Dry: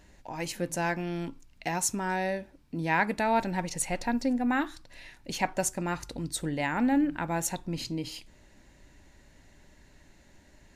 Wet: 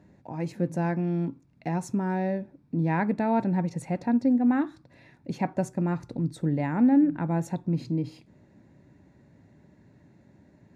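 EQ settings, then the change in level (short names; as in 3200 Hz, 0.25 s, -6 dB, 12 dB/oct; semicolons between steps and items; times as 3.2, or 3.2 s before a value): HPF 120 Hz 24 dB/oct; tilt -4.5 dB/oct; notch 3000 Hz, Q 7.2; -3.0 dB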